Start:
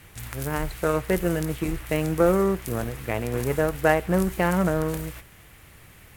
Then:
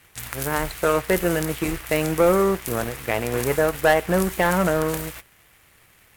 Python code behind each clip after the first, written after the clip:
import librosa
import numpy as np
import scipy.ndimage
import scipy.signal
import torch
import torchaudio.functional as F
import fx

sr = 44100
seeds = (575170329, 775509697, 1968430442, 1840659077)

y = fx.low_shelf(x, sr, hz=340.0, db=-9.5)
y = fx.leveller(y, sr, passes=2)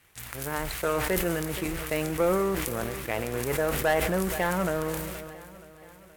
y = fx.echo_feedback(x, sr, ms=474, feedback_pct=58, wet_db=-18)
y = fx.sustainer(y, sr, db_per_s=29.0)
y = y * 10.0 ** (-7.5 / 20.0)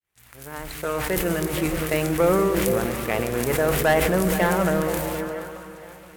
y = fx.fade_in_head(x, sr, length_s=1.57)
y = fx.echo_stepped(y, sr, ms=156, hz=190.0, octaves=0.7, feedback_pct=70, wet_db=-1.5)
y = y * 10.0 ** (5.0 / 20.0)